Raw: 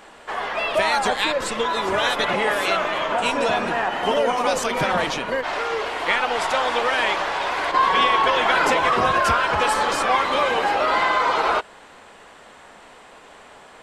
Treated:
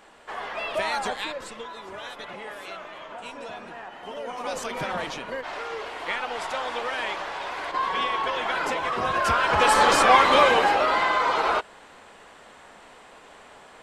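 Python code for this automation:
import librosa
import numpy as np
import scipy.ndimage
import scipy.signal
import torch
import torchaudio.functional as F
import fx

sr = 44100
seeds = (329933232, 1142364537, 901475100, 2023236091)

y = fx.gain(x, sr, db=fx.line((1.02, -7.0), (1.79, -17.0), (4.1, -17.0), (4.58, -8.5), (8.93, -8.5), (9.84, 3.5), (10.42, 3.5), (10.96, -3.0)))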